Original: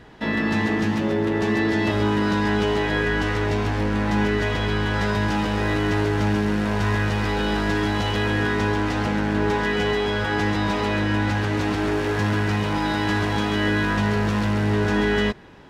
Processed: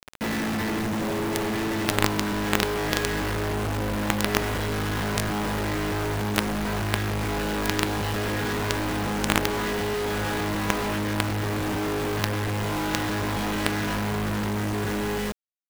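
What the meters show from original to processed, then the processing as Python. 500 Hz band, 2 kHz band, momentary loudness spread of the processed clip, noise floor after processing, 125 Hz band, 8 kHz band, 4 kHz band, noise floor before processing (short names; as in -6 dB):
-4.5 dB, -4.5 dB, 3 LU, -27 dBFS, -5.0 dB, +7.5 dB, -1.0 dB, -24 dBFS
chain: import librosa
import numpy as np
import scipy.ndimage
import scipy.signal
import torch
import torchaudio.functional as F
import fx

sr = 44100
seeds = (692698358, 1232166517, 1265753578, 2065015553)

y = fx.fade_out_tail(x, sr, length_s=1.26)
y = fx.high_shelf(y, sr, hz=2600.0, db=-12.0)
y = fx.quant_companded(y, sr, bits=2)
y = F.gain(torch.from_numpy(y), -1.5).numpy()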